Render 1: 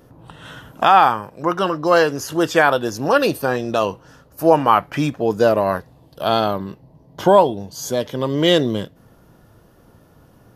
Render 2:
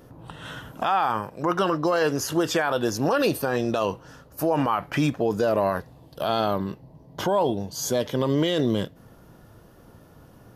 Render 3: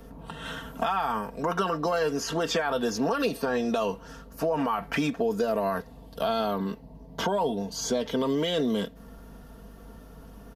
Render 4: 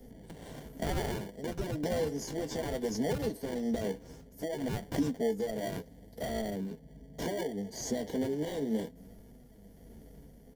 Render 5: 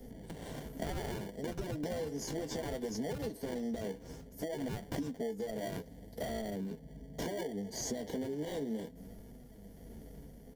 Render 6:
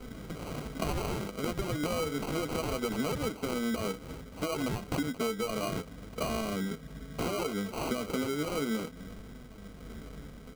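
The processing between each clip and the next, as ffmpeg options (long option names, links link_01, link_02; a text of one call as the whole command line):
ffmpeg -i in.wav -af "alimiter=limit=-13dB:level=0:latency=1:release=41" out.wav
ffmpeg -i in.wav -filter_complex "[0:a]aeval=exprs='val(0)+0.00355*(sin(2*PI*50*n/s)+sin(2*PI*2*50*n/s)/2+sin(2*PI*3*50*n/s)/3+sin(2*PI*4*50*n/s)/4+sin(2*PI*5*50*n/s)/5)':channel_layout=same,aecho=1:1:4.4:0.68,acrossover=split=190|6600[link_01][link_02][link_03];[link_01]acompressor=threshold=-41dB:ratio=4[link_04];[link_02]acompressor=threshold=-24dB:ratio=4[link_05];[link_03]acompressor=threshold=-52dB:ratio=4[link_06];[link_04][link_05][link_06]amix=inputs=3:normalize=0" out.wav
ffmpeg -i in.wav -filter_complex "[0:a]flanger=delay=7.8:depth=7:regen=33:speed=0.64:shape=triangular,tremolo=f=1:d=0.36,acrossover=split=250|660|4600[link_01][link_02][link_03][link_04];[link_03]acrusher=samples=34:mix=1:aa=0.000001[link_05];[link_01][link_02][link_05][link_04]amix=inputs=4:normalize=0" out.wav
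ffmpeg -i in.wav -af "acompressor=threshold=-37dB:ratio=5,volume=2dB" out.wav
ffmpeg -i in.wav -af "acrusher=samples=25:mix=1:aa=0.000001,volume=5.5dB" out.wav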